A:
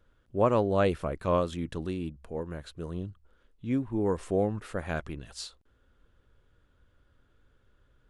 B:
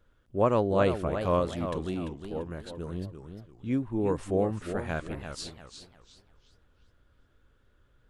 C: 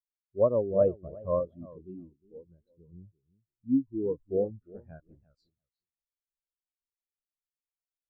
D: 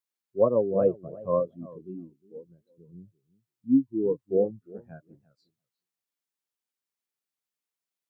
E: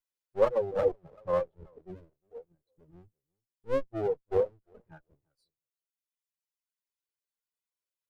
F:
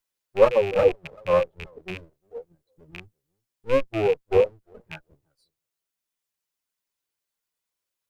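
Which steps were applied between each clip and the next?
modulated delay 350 ms, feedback 32%, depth 219 cents, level -8.5 dB
spectral contrast expander 2.5:1
high-pass 130 Hz 24 dB/octave; band-stop 600 Hz, Q 12; trim +4.5 dB
comb filter that takes the minimum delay 2 ms; reverb removal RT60 1.7 s; trim -1.5 dB
rattle on loud lows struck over -49 dBFS, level -31 dBFS; trim +8 dB

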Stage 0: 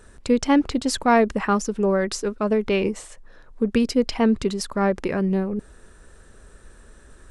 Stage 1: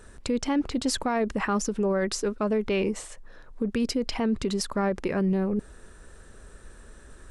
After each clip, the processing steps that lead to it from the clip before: peak limiter -18 dBFS, peak gain reduction 11.5 dB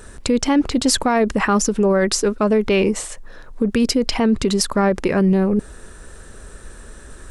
treble shelf 6.4 kHz +4.5 dB; trim +9 dB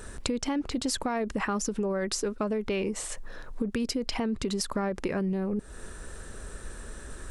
compression 5:1, threshold -25 dBFS, peak gain reduction 12 dB; trim -2.5 dB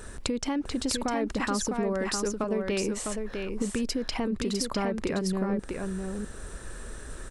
delay 654 ms -5 dB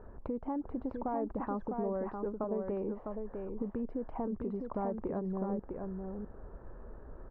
four-pole ladder low-pass 1.1 kHz, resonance 35%

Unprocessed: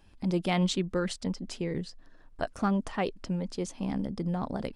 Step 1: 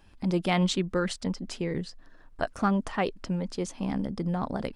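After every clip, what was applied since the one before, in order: peaking EQ 1.4 kHz +3 dB 1.5 oct; trim +1.5 dB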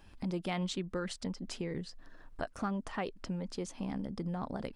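compression 2:1, threshold -40 dBFS, peak gain reduction 11 dB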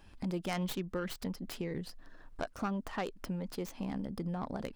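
tracing distortion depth 0.18 ms

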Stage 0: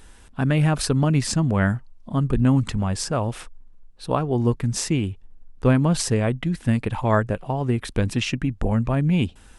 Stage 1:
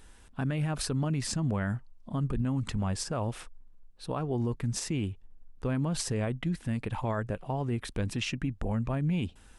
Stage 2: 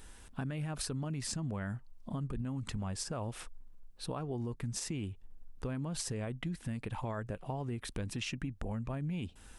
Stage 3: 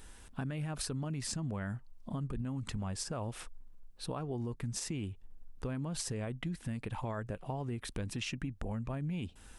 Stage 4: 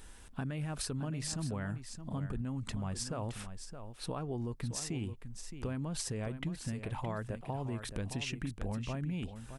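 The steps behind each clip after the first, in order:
peak limiter -15.5 dBFS, peak gain reduction 9 dB; trim -6.5 dB
treble shelf 6.8 kHz +4.5 dB; compression 3:1, threshold -38 dBFS, peak gain reduction 9.5 dB; trim +1 dB
no audible change
delay 618 ms -10 dB

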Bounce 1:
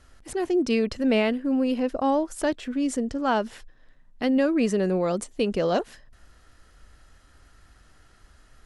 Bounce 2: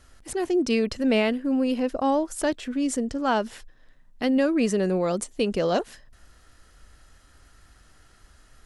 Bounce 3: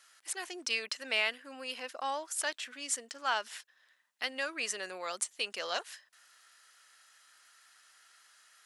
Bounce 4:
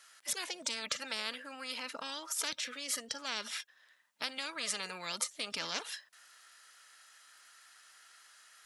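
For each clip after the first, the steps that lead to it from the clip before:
treble shelf 4.9 kHz +5 dB
high-pass 1.4 kHz 12 dB/octave
spectral noise reduction 23 dB; spectrum-flattening compressor 10:1

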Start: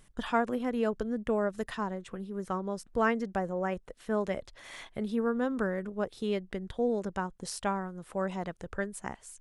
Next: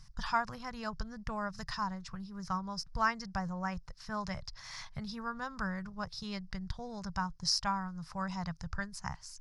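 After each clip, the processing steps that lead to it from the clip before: FFT filter 160 Hz 0 dB, 250 Hz -24 dB, 450 Hz -27 dB, 990 Hz -5 dB, 3.3 kHz -13 dB, 5.1 kHz +9 dB, 8.2 kHz -15 dB; trim +7 dB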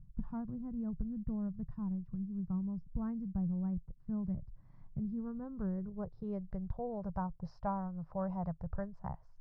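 low-pass sweep 270 Hz -> 590 Hz, 4.81–6.72 s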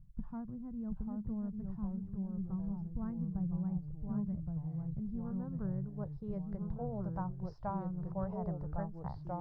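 ever faster or slower copies 706 ms, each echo -2 st, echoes 3; trim -2.5 dB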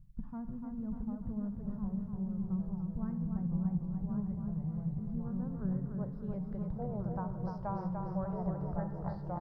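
feedback delay 295 ms, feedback 55%, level -5 dB; on a send at -11.5 dB: reverberation RT60 1.2 s, pre-delay 46 ms

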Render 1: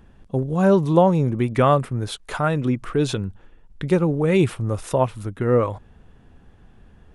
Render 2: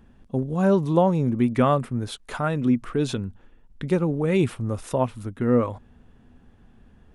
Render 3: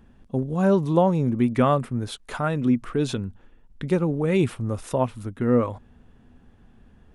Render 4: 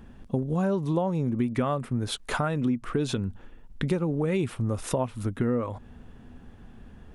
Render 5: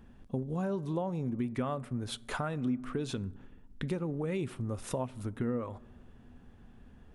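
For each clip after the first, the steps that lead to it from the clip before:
peaking EQ 240 Hz +9 dB 0.25 oct; trim -4 dB
no audible change
compression 6:1, threshold -29 dBFS, peak gain reduction 14.5 dB; trim +5.5 dB
reverberation RT60 1.2 s, pre-delay 4 ms, DRR 19 dB; trim -7.5 dB

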